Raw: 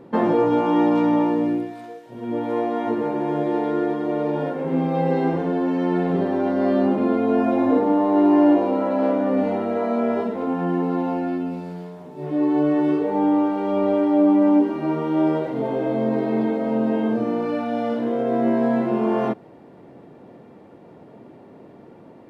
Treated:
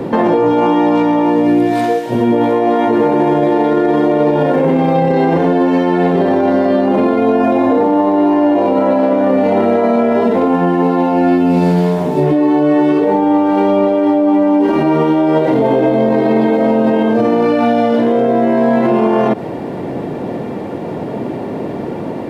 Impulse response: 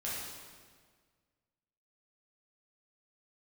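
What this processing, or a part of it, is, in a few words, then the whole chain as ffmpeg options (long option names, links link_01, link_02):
mastering chain: -filter_complex "[0:a]equalizer=frequency=1300:width_type=o:width=0.4:gain=-3.5,acrossover=split=110|400[link_01][link_02][link_03];[link_01]acompressor=threshold=-47dB:ratio=4[link_04];[link_02]acompressor=threshold=-28dB:ratio=4[link_05];[link_03]acompressor=threshold=-24dB:ratio=4[link_06];[link_04][link_05][link_06]amix=inputs=3:normalize=0,acompressor=threshold=-25dB:ratio=2.5,asoftclip=type=hard:threshold=-18dB,alimiter=level_in=27.5dB:limit=-1dB:release=50:level=0:latency=1,volume=-4dB"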